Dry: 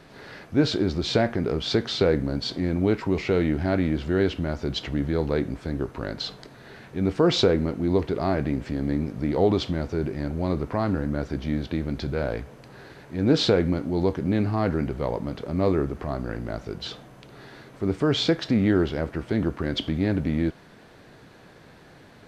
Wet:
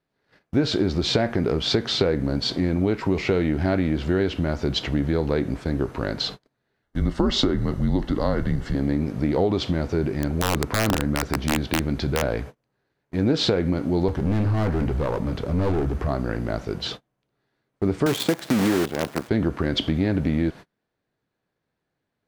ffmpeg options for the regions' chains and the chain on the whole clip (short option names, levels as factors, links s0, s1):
-filter_complex "[0:a]asettb=1/sr,asplit=3[s0][s1][s2];[s0]atrim=end=6.824[s3];[s1]atrim=start=6.82:end=8.75,asetpts=PTS-STARTPTS,afade=t=in:d=0.004:c=qsin,afade=t=out:st=1.926:d=0.004:c=qsin,afreqshift=-120,asuperstop=centerf=2400:order=4:qfactor=5.7[s4];[s2]atrim=start=8.746[s5];[s3][s4]acrossfade=d=0.004:c1=hsin:c2=qsin[s6];[s6][s5]acrossfade=d=0.004:c1=qsin:c2=hsin,asettb=1/sr,asplit=3[s7][s8][s9];[s7]atrim=end=10.074[s10];[s8]atrim=start=10.07:end=12.22,asetpts=PTS-STARTPTS,afade=t=in:d=0.004:c=qsin,afade=t=out:st=2.146:d=0.004:c=qsin,equalizer=f=550:t=o:w=0.4:g=-2.5,aeval=exprs='(mod(6.31*val(0)+1,2)-1)/6.31':c=same[s11];[s9]atrim=start=12.216[s12];[s10][s11]acrossfade=d=0.004:c1=hsin:c2=qsin[s13];[s13][s12]acrossfade=d=0.004:c1=qsin:c2=hsin,asettb=1/sr,asplit=3[s14][s15][s16];[s14]atrim=end=14.084[s17];[s15]atrim=start=14.08:end=16.08,asetpts=PTS-STARTPTS,afade=t=in:d=0.004:c=qsin,afade=t=out:st=1.996:d=0.004:c=qsin,aeval=exprs='clip(val(0),-1,0.0316)':c=same,equalizer=f=62:t=o:w=1.9:g=9.5[s18];[s16]atrim=start=16.076[s19];[s17][s18]acrossfade=d=0.004:c1=hsin:c2=qsin[s20];[s20][s19]acrossfade=d=0.004:c1=qsin:c2=hsin,asettb=1/sr,asplit=3[s21][s22][s23];[s21]atrim=end=18.064[s24];[s22]atrim=start=18.06:end=19.29,asetpts=PTS-STARTPTS,afade=t=in:d=0.004:c=qsin,afade=t=out:st=1.226:d=0.004:c=qsin,highshelf=f=3800:g=-9.5,acrusher=bits=5:dc=4:mix=0:aa=0.000001,highpass=140[s25];[s23]atrim=start=19.286[s26];[s24][s25]acrossfade=d=0.004:c1=hsin:c2=qsin[s27];[s27][s26]acrossfade=d=0.004:c1=qsin:c2=hsin,agate=range=0.0178:threshold=0.0126:ratio=16:detection=peak,acompressor=threshold=0.0794:ratio=6,volume=1.78"